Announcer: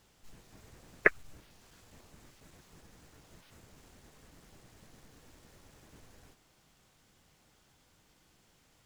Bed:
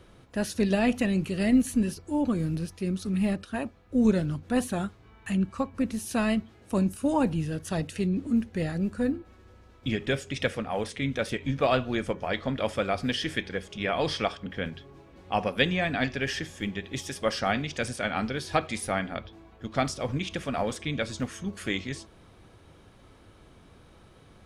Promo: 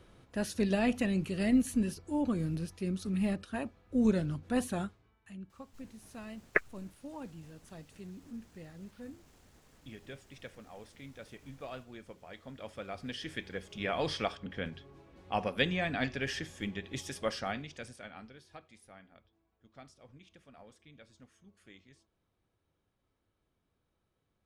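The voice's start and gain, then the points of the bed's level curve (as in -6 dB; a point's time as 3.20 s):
5.50 s, -4.0 dB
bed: 4.82 s -5 dB
5.21 s -20 dB
12.29 s -20 dB
13.79 s -5.5 dB
17.20 s -5.5 dB
18.63 s -26.5 dB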